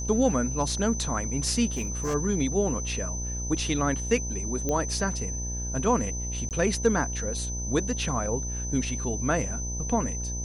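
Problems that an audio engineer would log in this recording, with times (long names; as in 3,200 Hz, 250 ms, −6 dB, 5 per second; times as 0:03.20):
mains buzz 60 Hz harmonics 17 −33 dBFS
whistle 6,100 Hz −34 dBFS
0:01.73–0:02.15: clipping −24.5 dBFS
0:04.69: click −15 dBFS
0:06.49–0:06.51: drop-out 18 ms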